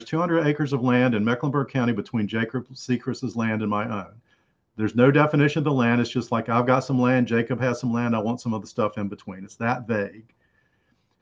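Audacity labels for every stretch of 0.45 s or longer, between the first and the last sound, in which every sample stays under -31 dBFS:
4.030000	4.790000	silence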